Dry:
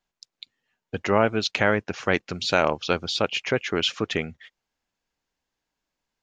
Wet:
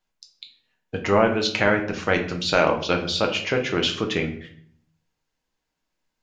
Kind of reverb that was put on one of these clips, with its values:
rectangular room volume 82 cubic metres, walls mixed, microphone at 0.55 metres

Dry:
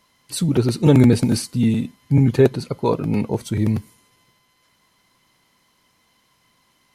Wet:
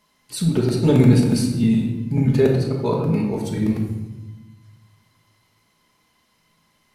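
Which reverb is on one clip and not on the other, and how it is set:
rectangular room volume 580 cubic metres, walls mixed, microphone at 1.4 metres
level −4.5 dB

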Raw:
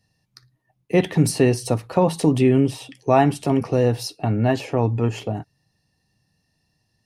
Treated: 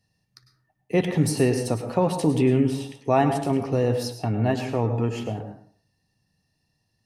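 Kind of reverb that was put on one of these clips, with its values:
dense smooth reverb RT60 0.52 s, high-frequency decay 0.5×, pre-delay 90 ms, DRR 7 dB
level −4 dB

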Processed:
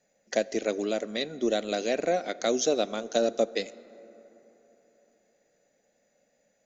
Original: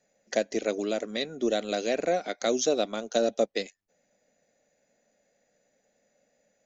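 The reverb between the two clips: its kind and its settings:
dense smooth reverb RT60 3.8 s, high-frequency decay 0.4×, DRR 18 dB

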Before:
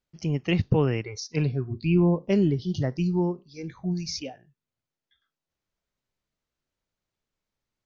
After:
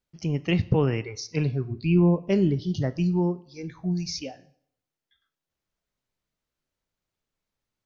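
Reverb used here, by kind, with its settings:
dense smooth reverb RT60 0.67 s, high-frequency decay 0.85×, DRR 15 dB

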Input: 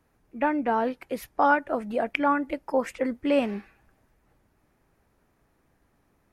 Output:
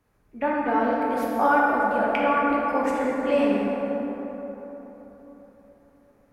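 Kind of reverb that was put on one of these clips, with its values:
dense smooth reverb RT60 4.2 s, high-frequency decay 0.4×, pre-delay 0 ms, DRR −5 dB
level −3 dB

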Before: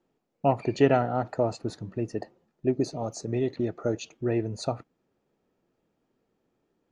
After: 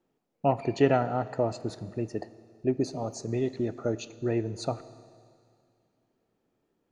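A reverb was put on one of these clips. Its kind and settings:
four-comb reverb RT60 2.3 s, combs from 27 ms, DRR 15.5 dB
level −1.5 dB

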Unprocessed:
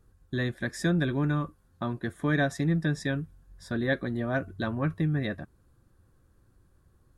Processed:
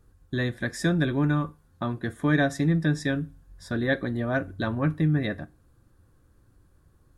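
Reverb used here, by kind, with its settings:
feedback delay network reverb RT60 0.33 s, low-frequency decay 1.05×, high-frequency decay 0.9×, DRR 14.5 dB
level +2.5 dB

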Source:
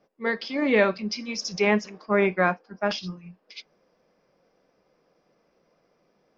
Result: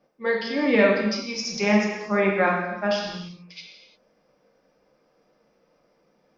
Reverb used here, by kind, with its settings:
reverb whose tail is shaped and stops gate 380 ms falling, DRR −1 dB
level −1.5 dB

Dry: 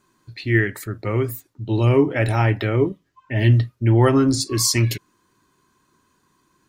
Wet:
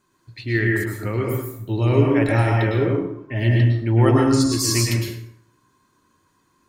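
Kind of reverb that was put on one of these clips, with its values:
dense smooth reverb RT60 0.75 s, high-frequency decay 0.65×, pre-delay 95 ms, DRR −1 dB
level −3.5 dB

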